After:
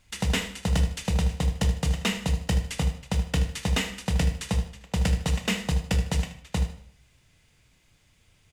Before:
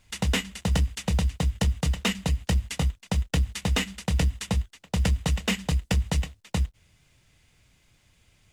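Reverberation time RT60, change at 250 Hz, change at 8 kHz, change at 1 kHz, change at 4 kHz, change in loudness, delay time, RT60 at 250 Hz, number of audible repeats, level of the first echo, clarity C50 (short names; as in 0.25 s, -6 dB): 0.60 s, 0.0 dB, -0.5 dB, 0.0 dB, -0.5 dB, 0.0 dB, 77 ms, 0.60 s, 2, -12.0 dB, 8.5 dB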